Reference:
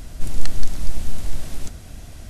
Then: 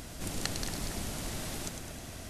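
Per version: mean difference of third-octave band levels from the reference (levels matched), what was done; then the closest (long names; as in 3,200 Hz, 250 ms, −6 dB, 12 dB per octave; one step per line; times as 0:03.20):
2.5 dB: high-pass filter 190 Hz 6 dB per octave
on a send: echo with a time of its own for lows and highs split 2,400 Hz, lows 230 ms, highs 104 ms, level −7 dB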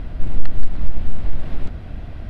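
8.0 dB: downward compressor 1.5 to 1, threshold −21 dBFS, peak gain reduction 6 dB
high-frequency loss of the air 420 metres
level +7 dB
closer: first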